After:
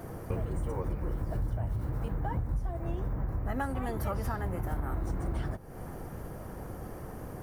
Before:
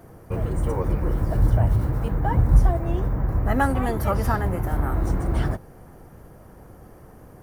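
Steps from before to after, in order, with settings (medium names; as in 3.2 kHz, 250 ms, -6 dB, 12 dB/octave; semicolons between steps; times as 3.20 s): compression 6:1, threshold -35 dBFS, peak gain reduction 23.5 dB; trim +4.5 dB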